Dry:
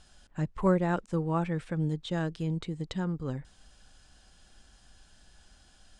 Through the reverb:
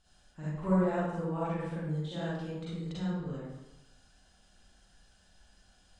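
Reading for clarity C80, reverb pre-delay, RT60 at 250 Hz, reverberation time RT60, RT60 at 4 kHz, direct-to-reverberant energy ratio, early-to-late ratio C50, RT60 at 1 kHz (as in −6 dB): 0.0 dB, 37 ms, 1.0 s, 0.95 s, 0.70 s, −9.5 dB, −4.5 dB, 0.95 s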